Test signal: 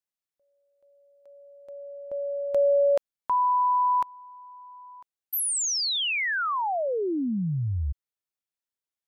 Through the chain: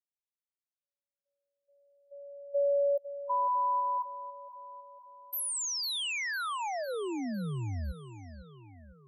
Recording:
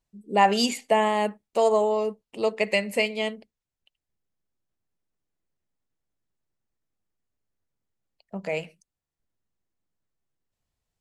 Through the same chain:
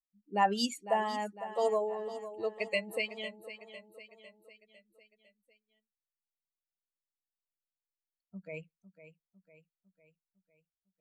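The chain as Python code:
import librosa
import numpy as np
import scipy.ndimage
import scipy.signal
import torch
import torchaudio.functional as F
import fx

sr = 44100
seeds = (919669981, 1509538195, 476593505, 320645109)

y = fx.bin_expand(x, sr, power=2.0)
y = fx.echo_feedback(y, sr, ms=503, feedback_pct=52, wet_db=-13.0)
y = F.gain(torch.from_numpy(y), -6.0).numpy()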